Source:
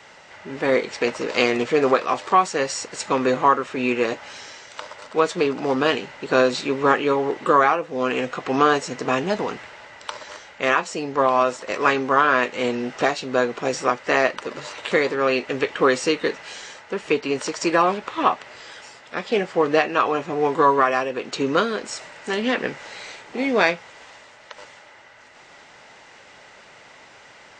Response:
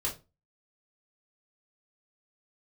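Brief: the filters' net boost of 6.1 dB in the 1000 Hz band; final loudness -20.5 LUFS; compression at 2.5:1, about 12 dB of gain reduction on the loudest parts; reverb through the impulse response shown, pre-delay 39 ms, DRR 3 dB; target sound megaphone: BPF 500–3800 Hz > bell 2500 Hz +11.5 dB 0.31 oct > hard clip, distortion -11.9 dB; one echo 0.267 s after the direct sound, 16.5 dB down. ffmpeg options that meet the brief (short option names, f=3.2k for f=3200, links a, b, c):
-filter_complex "[0:a]equalizer=f=1k:t=o:g=7.5,acompressor=threshold=-24dB:ratio=2.5,aecho=1:1:267:0.15,asplit=2[a][b];[1:a]atrim=start_sample=2205,adelay=39[c];[b][c]afir=irnorm=-1:irlink=0,volume=-7dB[d];[a][d]amix=inputs=2:normalize=0,highpass=500,lowpass=3.8k,equalizer=f=2.5k:t=o:w=0.31:g=11.5,asoftclip=type=hard:threshold=-19dB,volume=5.5dB"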